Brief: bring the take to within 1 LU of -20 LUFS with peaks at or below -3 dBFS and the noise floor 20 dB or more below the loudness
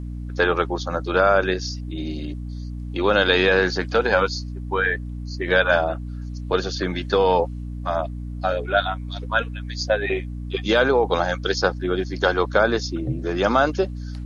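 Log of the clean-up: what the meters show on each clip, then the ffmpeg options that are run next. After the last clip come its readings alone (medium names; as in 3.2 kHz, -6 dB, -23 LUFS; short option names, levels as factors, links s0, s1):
hum 60 Hz; highest harmonic 300 Hz; hum level -28 dBFS; loudness -22.0 LUFS; peak level -3.0 dBFS; loudness target -20.0 LUFS
-> -af "bandreject=f=60:t=h:w=6,bandreject=f=120:t=h:w=6,bandreject=f=180:t=h:w=6,bandreject=f=240:t=h:w=6,bandreject=f=300:t=h:w=6"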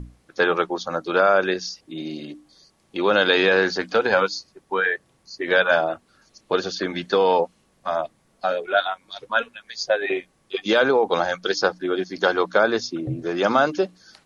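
hum not found; loudness -22.0 LUFS; peak level -2.5 dBFS; loudness target -20.0 LUFS
-> -af "volume=1.26,alimiter=limit=0.708:level=0:latency=1"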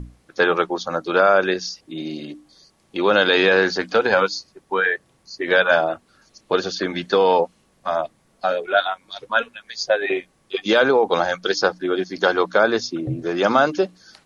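loudness -20.0 LUFS; peak level -3.0 dBFS; noise floor -61 dBFS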